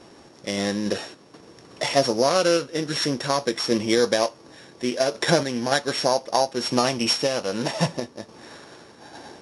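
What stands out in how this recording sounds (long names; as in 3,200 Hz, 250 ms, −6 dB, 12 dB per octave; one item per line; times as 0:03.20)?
a buzz of ramps at a fixed pitch in blocks of 8 samples
sample-and-hold tremolo
Ogg Vorbis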